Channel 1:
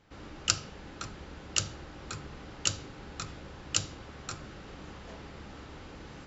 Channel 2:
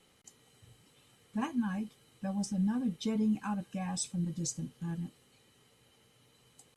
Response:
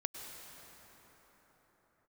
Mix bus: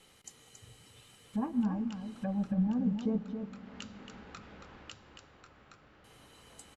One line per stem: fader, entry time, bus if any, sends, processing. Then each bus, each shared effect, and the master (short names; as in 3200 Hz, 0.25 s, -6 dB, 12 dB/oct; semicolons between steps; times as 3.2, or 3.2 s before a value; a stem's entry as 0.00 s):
-2.5 dB, 1.15 s, send -19 dB, echo send -8 dB, tone controls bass 0 dB, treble -14 dB; compressor 6:1, threshold -41 dBFS, peak gain reduction 14 dB; auto duck -21 dB, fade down 1.30 s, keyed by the second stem
+3.0 dB, 0.00 s, muted 3.18–6.04, send -7.5 dB, echo send -5 dB, treble ducked by the level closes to 660 Hz, closed at -32.5 dBFS; low shelf 100 Hz +10.5 dB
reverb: on, pre-delay 93 ms
echo: echo 0.276 s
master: low shelf 380 Hz -8 dB